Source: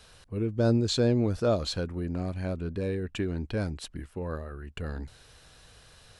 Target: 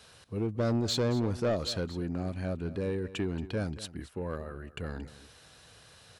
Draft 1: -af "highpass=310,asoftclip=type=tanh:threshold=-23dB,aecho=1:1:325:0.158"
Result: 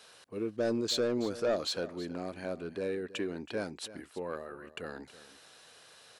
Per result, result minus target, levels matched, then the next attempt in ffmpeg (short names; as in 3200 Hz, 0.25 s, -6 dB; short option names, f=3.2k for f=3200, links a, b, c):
125 Hz band -12.0 dB; echo 98 ms late
-af "highpass=87,asoftclip=type=tanh:threshold=-23dB,aecho=1:1:325:0.158"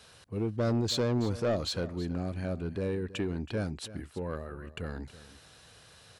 echo 98 ms late
-af "highpass=87,asoftclip=type=tanh:threshold=-23dB,aecho=1:1:227:0.158"